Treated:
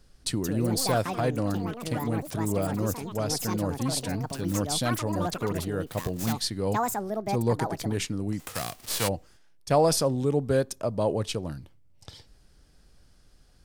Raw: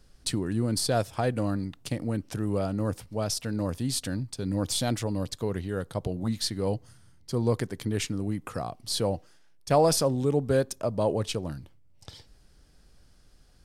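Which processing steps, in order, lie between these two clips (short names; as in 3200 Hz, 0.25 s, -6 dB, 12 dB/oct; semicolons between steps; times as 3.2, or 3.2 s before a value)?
8.39–9.07 spectral whitening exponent 0.3; echoes that change speed 0.264 s, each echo +7 st, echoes 2, each echo -6 dB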